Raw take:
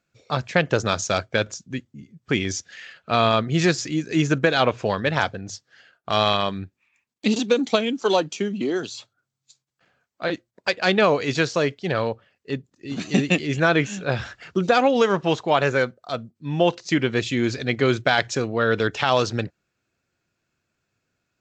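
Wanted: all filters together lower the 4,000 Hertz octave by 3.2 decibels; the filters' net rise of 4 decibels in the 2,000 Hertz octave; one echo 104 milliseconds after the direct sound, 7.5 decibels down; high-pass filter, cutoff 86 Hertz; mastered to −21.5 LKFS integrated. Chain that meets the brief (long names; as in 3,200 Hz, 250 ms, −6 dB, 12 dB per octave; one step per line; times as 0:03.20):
high-pass filter 86 Hz
parametric band 2,000 Hz +7 dB
parametric band 4,000 Hz −7 dB
single-tap delay 104 ms −7.5 dB
level −0.5 dB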